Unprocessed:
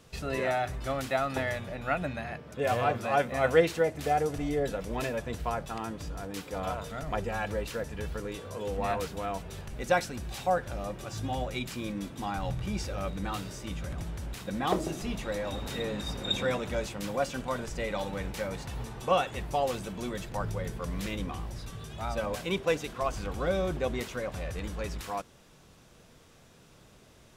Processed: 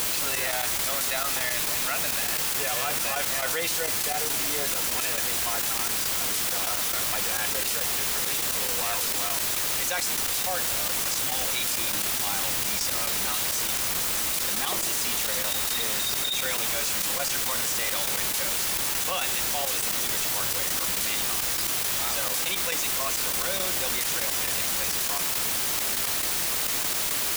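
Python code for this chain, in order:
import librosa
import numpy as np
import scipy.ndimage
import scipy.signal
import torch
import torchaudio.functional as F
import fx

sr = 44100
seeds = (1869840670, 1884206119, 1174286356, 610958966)

p1 = librosa.effects.preemphasis(x, coef=0.97, zi=[0.0])
p2 = fx.quant_dither(p1, sr, seeds[0], bits=6, dither='triangular')
p3 = p1 + (p2 * 10.0 ** (-4.0 / 20.0))
p4 = fx.step_gate(p3, sr, bpm=171, pattern='xxxx..x..x', floor_db=-12.0, edge_ms=4.5)
p5 = fx.env_flatten(p4, sr, amount_pct=100)
y = p5 * 10.0 ** (5.0 / 20.0)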